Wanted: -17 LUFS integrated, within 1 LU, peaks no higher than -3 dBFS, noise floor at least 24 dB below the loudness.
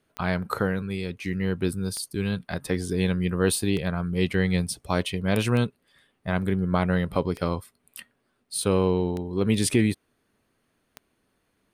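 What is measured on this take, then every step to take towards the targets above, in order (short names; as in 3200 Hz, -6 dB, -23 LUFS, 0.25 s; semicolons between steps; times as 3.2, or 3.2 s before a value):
clicks 7; loudness -26.0 LUFS; peak -8.5 dBFS; loudness target -17.0 LUFS
-> de-click; gain +9 dB; limiter -3 dBFS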